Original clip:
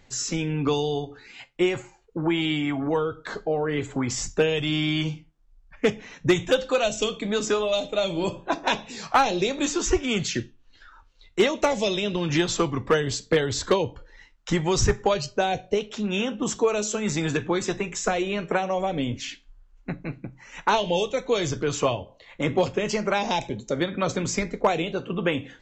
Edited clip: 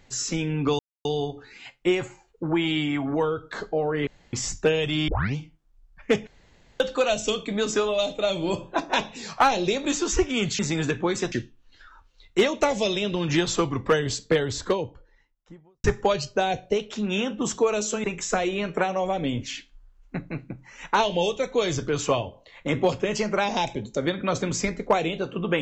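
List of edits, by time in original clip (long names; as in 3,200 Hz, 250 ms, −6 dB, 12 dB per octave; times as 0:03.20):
0:00.79: splice in silence 0.26 s
0:03.81–0:04.07: fill with room tone
0:04.82: tape start 0.28 s
0:06.01–0:06.54: fill with room tone
0:13.15–0:14.85: fade out and dull
0:17.05–0:17.78: move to 0:10.33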